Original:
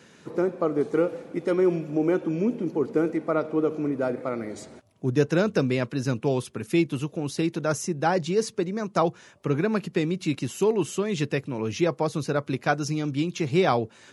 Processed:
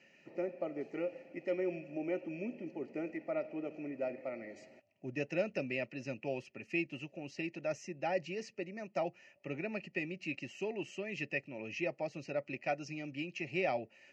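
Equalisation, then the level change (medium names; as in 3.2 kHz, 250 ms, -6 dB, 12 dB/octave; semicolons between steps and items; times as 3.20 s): vowel filter e; static phaser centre 2.4 kHz, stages 8; +8.5 dB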